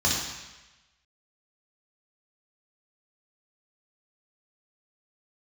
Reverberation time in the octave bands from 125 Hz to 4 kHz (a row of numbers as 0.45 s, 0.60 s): 1.0 s, 0.95 s, 1.0 s, 1.1 s, 1.2 s, 1.1 s